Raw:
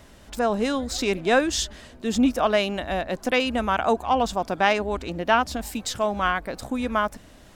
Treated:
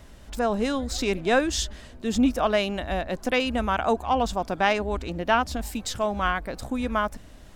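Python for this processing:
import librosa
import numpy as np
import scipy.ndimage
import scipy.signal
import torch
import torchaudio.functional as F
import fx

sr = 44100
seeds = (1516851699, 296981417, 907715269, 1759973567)

y = fx.low_shelf(x, sr, hz=83.0, db=9.5)
y = F.gain(torch.from_numpy(y), -2.0).numpy()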